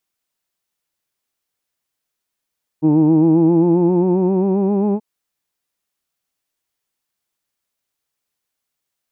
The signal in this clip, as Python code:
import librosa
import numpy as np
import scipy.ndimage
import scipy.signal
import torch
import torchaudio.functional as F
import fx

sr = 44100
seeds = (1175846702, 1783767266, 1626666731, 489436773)

y = fx.formant_vowel(sr, seeds[0], length_s=2.18, hz=151.0, glide_st=5.5, vibrato_hz=7.5, vibrato_st=0.65, f1_hz=320.0, f2_hz=880.0, f3_hz=2500.0)